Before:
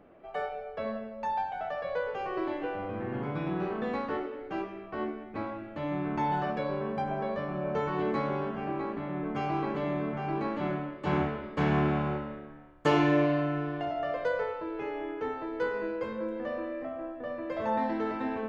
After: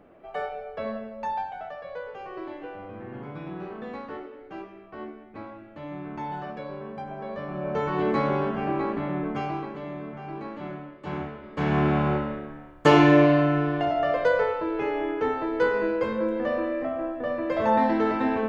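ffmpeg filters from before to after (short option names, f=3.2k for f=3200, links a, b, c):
-af "volume=26dB,afade=t=out:st=1.22:d=0.56:silence=0.446684,afade=t=in:st=7.17:d=1.1:silence=0.281838,afade=t=out:st=9.06:d=0.64:silence=0.281838,afade=t=in:st=11.41:d=0.79:silence=0.237137"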